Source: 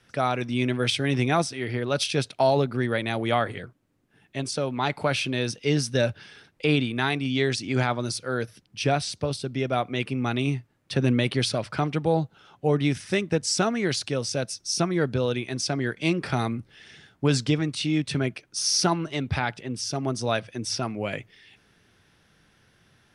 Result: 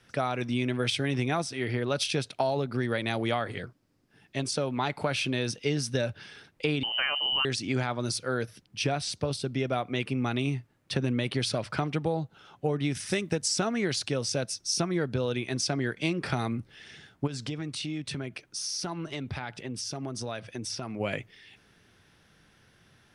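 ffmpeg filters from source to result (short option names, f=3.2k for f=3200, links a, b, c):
-filter_complex "[0:a]asettb=1/sr,asplit=3[a][b][c];[a]atrim=end=2.724[d];[b]atrim=start=2.72:end=4.44,asetpts=PTS-STARTPTS,afade=t=in:d=0.004:c=qsin,afade=t=out:st=1.716:d=0.004:c=qsin,equalizer=f=5k:w=3.2:g=8.5[e];[c]atrim=start=4.436[f];[d][e]acrossfade=d=0.004:c1=hsin:c2=qsin[g];[g][f]acrossfade=d=0.004:c1=qsin:c2=hsin,asettb=1/sr,asplit=3[h][i][j];[h]atrim=end=6.834[k];[i]atrim=start=6.83:end=7.45,asetpts=PTS-STARTPTS,afade=t=in:d=0.004:c=qsin,afade=t=out:st=0.616:d=0.004:c=qsin,lowpass=f=2.7k:t=q:w=0.5098,lowpass=f=2.7k:t=q:w=0.6013,lowpass=f=2.7k:t=q:w=0.9,lowpass=f=2.7k:t=q:w=2.563,afreqshift=-3200[l];[j]atrim=start=7.446[m];[k][l]acrossfade=d=0.004:c1=hsin:c2=qsin[n];[n][m]acrossfade=d=0.004:c1=qsin:c2=hsin,asettb=1/sr,asplit=3[o][p][q];[o]atrim=end=12.954[r];[p]atrim=start=12.95:end=13.48,asetpts=PTS-STARTPTS,afade=t=in:d=0.004:c=qsin,afade=t=out:st=0.526:d=0.004:c=qsin,highshelf=f=5.2k:g=9[s];[q]atrim=start=13.476[t];[r][s]acrossfade=d=0.004:c1=hsin:c2=qsin[u];[u][t]acrossfade=d=0.004:c1=qsin:c2=hsin,asplit=3[v][w][x];[v]afade=t=out:st=17.26:d=0.02[y];[w]acompressor=threshold=-32dB:ratio=4:attack=3.2:release=140:knee=1:detection=peak,afade=t=in:st=17.26:d=0.02,afade=t=out:st=20.99:d=0.02[z];[x]afade=t=in:st=20.99:d=0.02[aa];[y][z][aa]amix=inputs=3:normalize=0,acompressor=threshold=-24dB:ratio=6"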